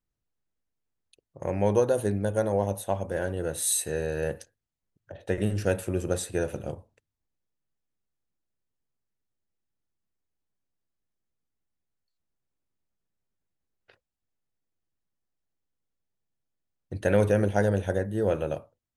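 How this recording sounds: noise floor -86 dBFS; spectral tilt -4.5 dB/octave

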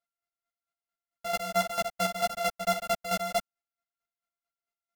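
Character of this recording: a buzz of ramps at a fixed pitch in blocks of 64 samples; chopped level 4.5 Hz, depth 65%, duty 25%; a shimmering, thickened sound

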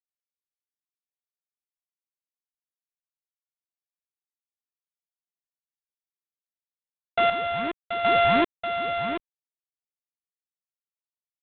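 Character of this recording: a buzz of ramps at a fixed pitch in blocks of 64 samples; chopped level 0.87 Hz, depth 60%, duty 35%; G.726

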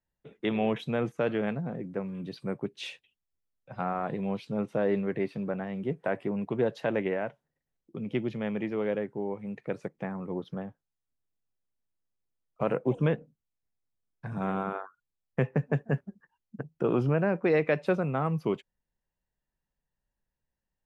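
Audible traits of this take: noise floor -87 dBFS; spectral tilt -5.0 dB/octave

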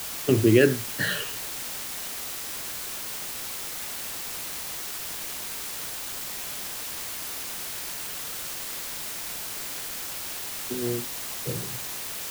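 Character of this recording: phasing stages 8, 0.58 Hz, lowest notch 250–1300 Hz; a quantiser's noise floor 6-bit, dither triangular

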